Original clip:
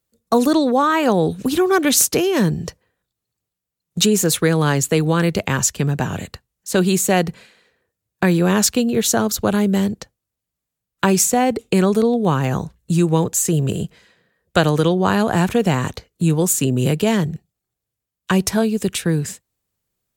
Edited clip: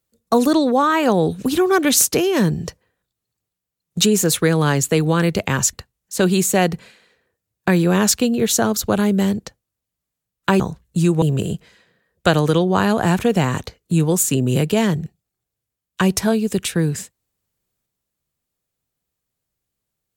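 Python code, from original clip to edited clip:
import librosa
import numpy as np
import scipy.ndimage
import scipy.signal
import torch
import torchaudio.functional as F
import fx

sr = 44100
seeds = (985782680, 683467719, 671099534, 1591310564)

y = fx.edit(x, sr, fx.cut(start_s=5.73, length_s=0.55),
    fx.cut(start_s=11.15, length_s=1.39),
    fx.cut(start_s=13.16, length_s=0.36), tone=tone)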